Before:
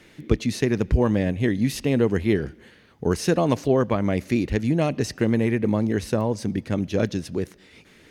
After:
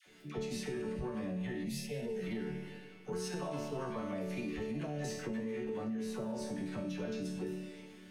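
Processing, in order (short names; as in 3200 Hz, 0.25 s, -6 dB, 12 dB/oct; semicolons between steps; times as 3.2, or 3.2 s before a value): one diode to ground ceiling -11 dBFS; resonator bank D3 major, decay 0.57 s; on a send at -14 dB: bell 2800 Hz +11 dB 0.45 oct + reverb RT60 2.8 s, pre-delay 29 ms; on the sum: limiter -37.5 dBFS, peak gain reduction 10 dB; 1.63–2.21 fixed phaser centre 310 Hz, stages 6; dispersion lows, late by 67 ms, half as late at 800 Hz; compressor, threshold -46 dBFS, peak gain reduction 6 dB; gain +11 dB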